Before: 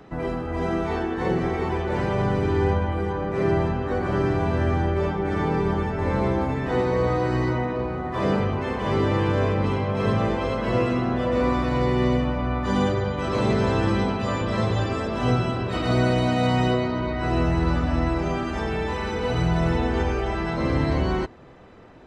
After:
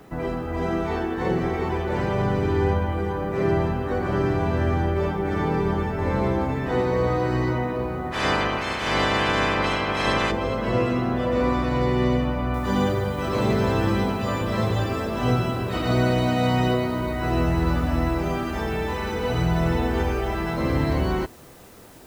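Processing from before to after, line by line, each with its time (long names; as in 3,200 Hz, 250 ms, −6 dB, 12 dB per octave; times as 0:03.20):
0:08.11–0:10.30: ceiling on every frequency bin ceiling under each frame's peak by 23 dB
0:12.54: noise floor change −65 dB −53 dB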